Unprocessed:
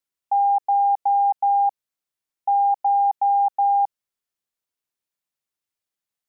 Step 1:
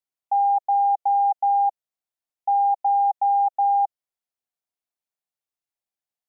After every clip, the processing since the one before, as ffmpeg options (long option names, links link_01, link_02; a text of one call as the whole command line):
ffmpeg -i in.wav -af "equalizer=frequency=720:width_type=o:width=0.57:gain=8,volume=-7dB" out.wav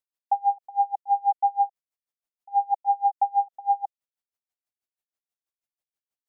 ffmpeg -i in.wav -af "aeval=exprs='val(0)*pow(10,-30*(0.5-0.5*cos(2*PI*6.2*n/s))/20)':channel_layout=same,volume=2dB" out.wav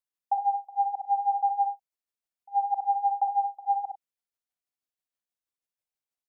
ffmpeg -i in.wav -af "aecho=1:1:40|59|63|100:0.251|0.316|0.473|0.188,volume=-3.5dB" out.wav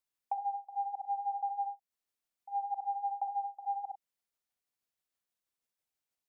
ffmpeg -i in.wav -af "acompressor=threshold=-40dB:ratio=2.5,volume=2dB" out.wav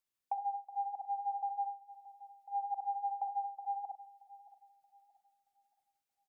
ffmpeg -i in.wav -filter_complex "[0:a]asplit=2[link_01][link_02];[link_02]adelay=627,lowpass=frequency=970:poles=1,volume=-14.5dB,asplit=2[link_03][link_04];[link_04]adelay=627,lowpass=frequency=970:poles=1,volume=0.41,asplit=2[link_05][link_06];[link_06]adelay=627,lowpass=frequency=970:poles=1,volume=0.41,asplit=2[link_07][link_08];[link_08]adelay=627,lowpass=frequency=970:poles=1,volume=0.41[link_09];[link_01][link_03][link_05][link_07][link_09]amix=inputs=5:normalize=0,volume=-1.5dB" out.wav